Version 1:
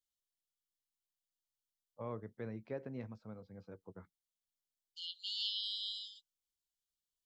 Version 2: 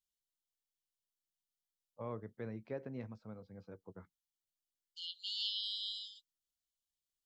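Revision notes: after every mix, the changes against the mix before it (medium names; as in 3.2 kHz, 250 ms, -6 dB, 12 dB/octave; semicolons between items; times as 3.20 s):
no change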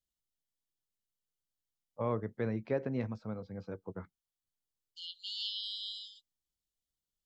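first voice +9.5 dB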